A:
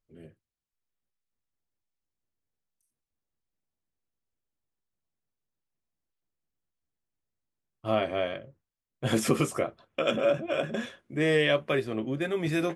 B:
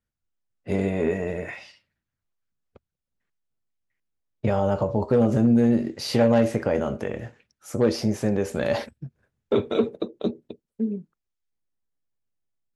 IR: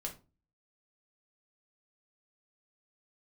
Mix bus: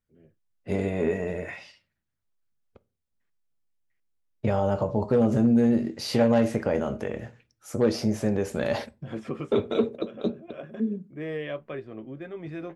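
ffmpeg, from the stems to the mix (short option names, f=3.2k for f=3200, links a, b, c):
-filter_complex "[0:a]lowpass=f=3k:p=1,aemphasis=mode=reproduction:type=75kf,volume=-8dB[a];[1:a]volume=-3.5dB,asplit=3[b][c][d];[c]volume=-11.5dB[e];[d]apad=whole_len=562701[f];[a][f]sidechaincompress=threshold=-40dB:ratio=10:attack=7.2:release=158[g];[2:a]atrim=start_sample=2205[h];[e][h]afir=irnorm=-1:irlink=0[i];[g][b][i]amix=inputs=3:normalize=0"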